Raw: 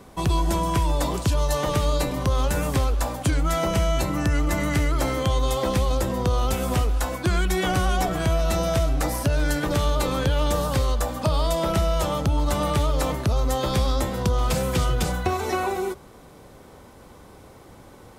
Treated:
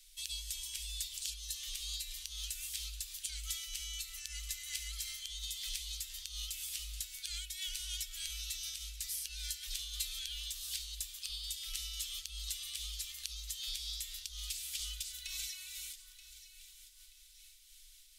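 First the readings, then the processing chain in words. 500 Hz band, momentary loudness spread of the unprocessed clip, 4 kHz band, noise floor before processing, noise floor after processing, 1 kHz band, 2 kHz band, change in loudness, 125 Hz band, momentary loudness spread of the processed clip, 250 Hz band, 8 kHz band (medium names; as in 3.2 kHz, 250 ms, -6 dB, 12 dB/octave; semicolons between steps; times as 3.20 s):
under -40 dB, 2 LU, -6.0 dB, -47 dBFS, -59 dBFS, under -40 dB, -19.0 dB, -16.0 dB, under -30 dB, 13 LU, under -40 dB, -5.0 dB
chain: inverse Chebyshev band-stop 110–790 Hz, stop band 70 dB; compression 4:1, threshold -37 dBFS, peak gain reduction 8 dB; echo whose repeats swap between lows and highs 465 ms, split 1.6 kHz, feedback 58%, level -9 dB; random flutter of the level, depth 60%; trim +2 dB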